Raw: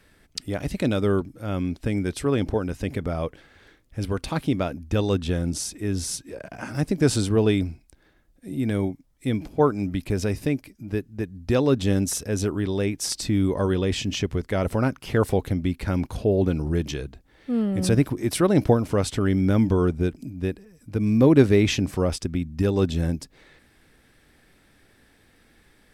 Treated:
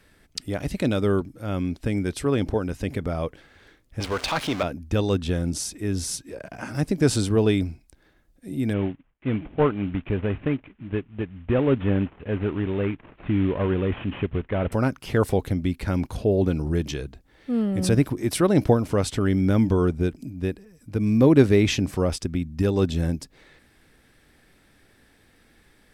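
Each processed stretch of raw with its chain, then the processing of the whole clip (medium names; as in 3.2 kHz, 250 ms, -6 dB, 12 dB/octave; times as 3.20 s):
4.00–4.63 s: jump at every zero crossing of -34 dBFS + three-band isolator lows -14 dB, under 510 Hz, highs -13 dB, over 7.2 kHz + waveshaping leveller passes 2
8.73–14.72 s: CVSD coder 16 kbps + gate with hold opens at -49 dBFS, closes at -52 dBFS
whole clip: none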